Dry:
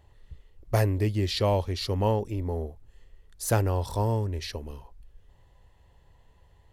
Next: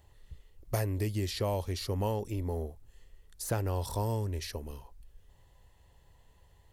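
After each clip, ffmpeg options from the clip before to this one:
-filter_complex "[0:a]highshelf=f=5.2k:g=10.5,acrossover=split=2300|5200[a][b][c];[a]acompressor=threshold=-25dB:ratio=4[d];[b]acompressor=threshold=-48dB:ratio=4[e];[c]acompressor=threshold=-39dB:ratio=4[f];[d][e][f]amix=inputs=3:normalize=0,volume=-3dB"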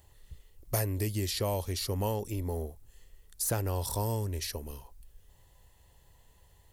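-af "highshelf=f=6k:g=10.5"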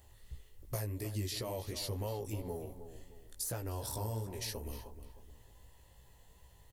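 -filter_complex "[0:a]acompressor=threshold=-36dB:ratio=6,flanger=delay=16:depth=3.1:speed=2.8,asplit=2[a][b];[b]adelay=309,lowpass=f=2.1k:p=1,volume=-10.5dB,asplit=2[c][d];[d]adelay=309,lowpass=f=2.1k:p=1,volume=0.37,asplit=2[e][f];[f]adelay=309,lowpass=f=2.1k:p=1,volume=0.37,asplit=2[g][h];[h]adelay=309,lowpass=f=2.1k:p=1,volume=0.37[i];[a][c][e][g][i]amix=inputs=5:normalize=0,volume=3dB"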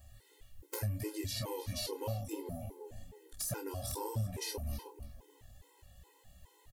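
-filter_complex "[0:a]aeval=exprs='(mod(18.8*val(0)+1,2)-1)/18.8':c=same,asplit=2[a][b];[b]adelay=28,volume=-9dB[c];[a][c]amix=inputs=2:normalize=0,afftfilt=real='re*gt(sin(2*PI*2.4*pts/sr)*(1-2*mod(floor(b*sr/1024/270),2)),0)':imag='im*gt(sin(2*PI*2.4*pts/sr)*(1-2*mod(floor(b*sr/1024/270),2)),0)':win_size=1024:overlap=0.75,volume=3.5dB"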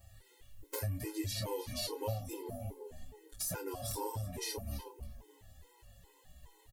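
-filter_complex "[0:a]asplit=2[a][b];[b]adelay=7,afreqshift=-1.5[c];[a][c]amix=inputs=2:normalize=1,volume=3.5dB"

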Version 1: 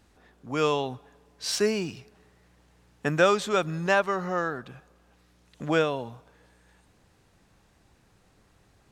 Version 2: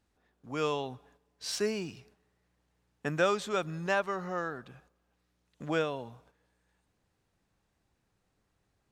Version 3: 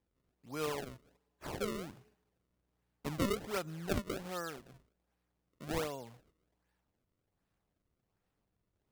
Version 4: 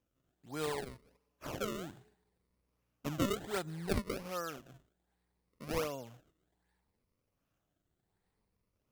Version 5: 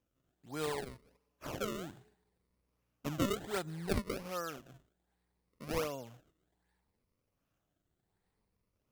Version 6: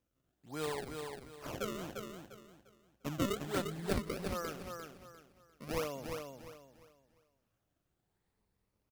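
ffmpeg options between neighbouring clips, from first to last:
-af "agate=range=-8dB:threshold=-55dB:ratio=16:detection=peak,volume=-6.5dB"
-af "acrusher=samples=31:mix=1:aa=0.000001:lfo=1:lforange=49.6:lforate=1.3,volume=-6dB"
-af "afftfilt=real='re*pow(10,6/40*sin(2*PI*(0.89*log(max(b,1)*sr/1024/100)/log(2)-(0.67)*(pts-256)/sr)))':imag='im*pow(10,6/40*sin(2*PI*(0.89*log(max(b,1)*sr/1024/100)/log(2)-(0.67)*(pts-256)/sr)))':win_size=1024:overlap=0.75"
-af anull
-af "aecho=1:1:349|698|1047|1396:0.531|0.159|0.0478|0.0143,volume=-1dB"

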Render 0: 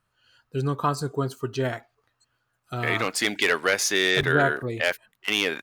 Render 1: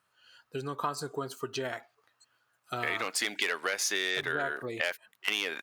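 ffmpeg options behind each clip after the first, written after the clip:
-af "acompressor=threshold=-29dB:ratio=6,highpass=f=510:p=1,volume=2.5dB"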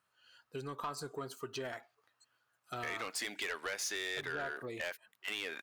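-af "asoftclip=type=tanh:threshold=-26dB,volume=-5dB"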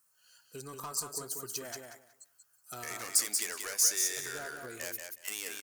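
-af "aexciter=amount=7.3:drive=6.1:freq=5.1k,aecho=1:1:184|368|552:0.562|0.101|0.0182,volume=-3.5dB"

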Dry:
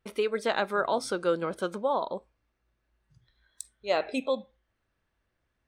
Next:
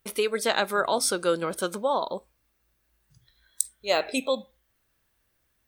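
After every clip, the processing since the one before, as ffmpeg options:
-af "aemphasis=mode=production:type=75fm,volume=2.5dB"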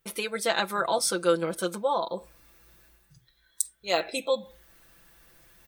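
-af "aecho=1:1:5.9:0.71,areverse,acompressor=mode=upward:threshold=-39dB:ratio=2.5,areverse,volume=-3dB"

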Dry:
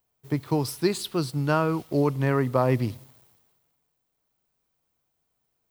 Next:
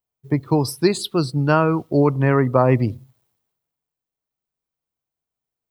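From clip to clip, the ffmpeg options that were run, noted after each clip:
-af "afftdn=nr=17:nf=-41,volume=6.5dB"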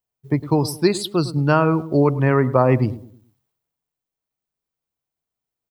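-filter_complex "[0:a]asplit=2[a][b];[b]adelay=106,lowpass=f=960:p=1,volume=-14dB,asplit=2[c][d];[d]adelay=106,lowpass=f=960:p=1,volume=0.39,asplit=2[e][f];[f]adelay=106,lowpass=f=960:p=1,volume=0.39,asplit=2[g][h];[h]adelay=106,lowpass=f=960:p=1,volume=0.39[i];[a][c][e][g][i]amix=inputs=5:normalize=0"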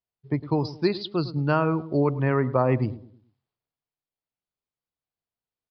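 -af "aresample=11025,aresample=44100,volume=-6dB"

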